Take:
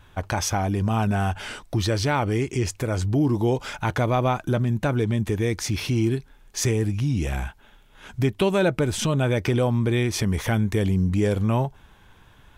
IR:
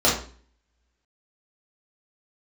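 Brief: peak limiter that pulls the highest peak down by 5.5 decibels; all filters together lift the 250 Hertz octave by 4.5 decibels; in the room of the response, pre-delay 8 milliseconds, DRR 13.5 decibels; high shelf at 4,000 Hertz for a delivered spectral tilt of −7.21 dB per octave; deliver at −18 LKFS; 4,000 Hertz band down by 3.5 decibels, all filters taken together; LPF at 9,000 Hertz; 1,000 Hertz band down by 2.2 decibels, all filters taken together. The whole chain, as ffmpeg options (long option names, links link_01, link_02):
-filter_complex "[0:a]lowpass=9000,equalizer=frequency=250:width_type=o:gain=6,equalizer=frequency=1000:width_type=o:gain=-3.5,highshelf=frequency=4000:gain=4,equalizer=frequency=4000:width_type=o:gain=-7,alimiter=limit=-13.5dB:level=0:latency=1,asplit=2[link_01][link_02];[1:a]atrim=start_sample=2205,adelay=8[link_03];[link_02][link_03]afir=irnorm=-1:irlink=0,volume=-31.5dB[link_04];[link_01][link_04]amix=inputs=2:normalize=0,volume=5dB"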